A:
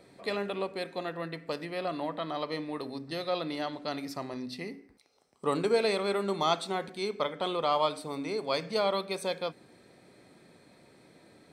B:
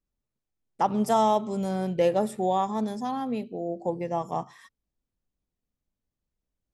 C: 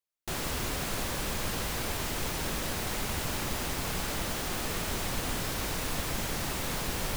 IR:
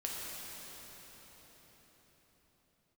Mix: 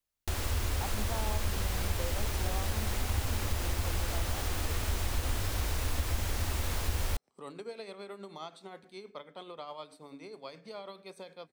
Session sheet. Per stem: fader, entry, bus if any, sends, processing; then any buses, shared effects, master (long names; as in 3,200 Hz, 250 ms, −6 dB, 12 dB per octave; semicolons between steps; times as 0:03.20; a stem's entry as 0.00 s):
−12.0 dB, 1.95 s, no send, amplitude tremolo 9.4 Hz, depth 51%; multiband upward and downward compressor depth 40%
−12.0 dB, 0.00 s, no send, no processing
+2.5 dB, 0.00 s, no send, low shelf with overshoot 110 Hz +8 dB, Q 3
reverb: not used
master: downward compressor 1.5 to 1, threshold −39 dBFS, peak gain reduction 8 dB